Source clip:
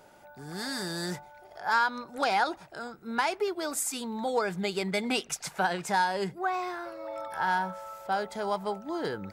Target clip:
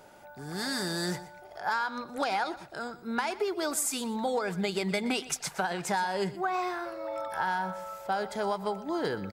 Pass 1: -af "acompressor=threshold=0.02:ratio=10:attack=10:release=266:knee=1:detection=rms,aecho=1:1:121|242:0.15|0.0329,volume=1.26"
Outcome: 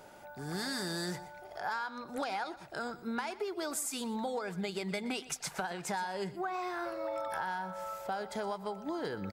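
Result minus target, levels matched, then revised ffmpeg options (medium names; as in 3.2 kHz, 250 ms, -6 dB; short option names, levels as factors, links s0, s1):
compression: peak gain reduction +6.5 dB
-af "acompressor=threshold=0.0473:ratio=10:attack=10:release=266:knee=1:detection=rms,aecho=1:1:121|242:0.15|0.0329,volume=1.26"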